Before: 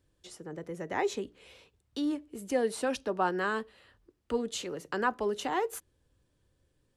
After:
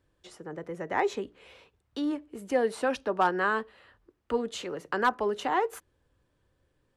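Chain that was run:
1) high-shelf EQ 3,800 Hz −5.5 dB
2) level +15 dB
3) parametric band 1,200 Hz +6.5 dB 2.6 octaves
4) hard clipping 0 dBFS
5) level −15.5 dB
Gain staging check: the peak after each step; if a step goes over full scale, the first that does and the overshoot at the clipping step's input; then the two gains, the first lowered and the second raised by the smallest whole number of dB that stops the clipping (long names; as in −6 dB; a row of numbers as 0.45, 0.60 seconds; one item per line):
−17.0, −2.0, +4.5, 0.0, −15.5 dBFS
step 3, 4.5 dB
step 2 +10 dB, step 5 −10.5 dB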